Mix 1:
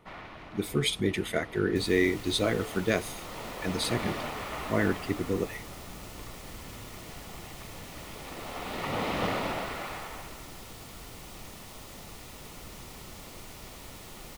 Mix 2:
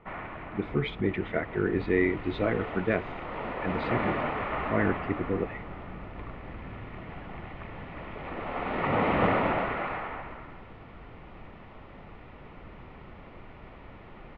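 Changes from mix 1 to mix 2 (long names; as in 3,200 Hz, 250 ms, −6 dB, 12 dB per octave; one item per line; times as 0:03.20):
first sound +6.0 dB
second sound: add high-frequency loss of the air 67 metres
master: add low-pass filter 2,400 Hz 24 dB per octave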